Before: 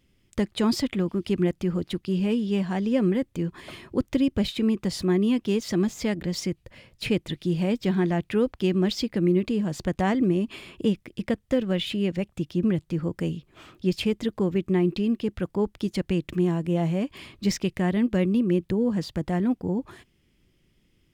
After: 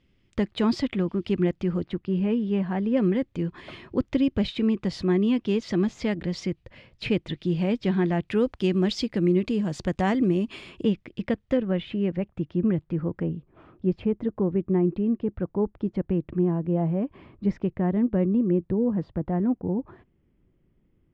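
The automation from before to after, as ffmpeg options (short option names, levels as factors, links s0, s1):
-af "asetnsamples=n=441:p=0,asendcmd='1.85 lowpass f 2100;2.97 lowpass f 4000;8.28 lowpass f 7000;10.83 lowpass f 3700;11.57 lowpass f 1800;13.23 lowpass f 1100',lowpass=3900"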